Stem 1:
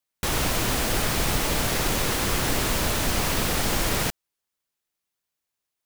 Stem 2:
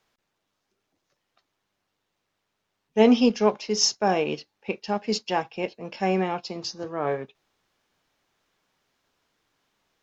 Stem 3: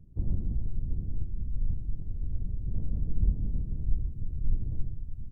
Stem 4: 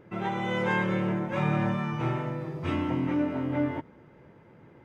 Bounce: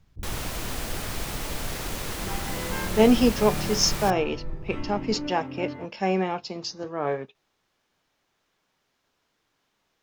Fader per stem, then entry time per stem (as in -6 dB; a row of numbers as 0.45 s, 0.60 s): -8.5 dB, -0.5 dB, -8.0 dB, -7.0 dB; 0.00 s, 0.00 s, 0.00 s, 2.05 s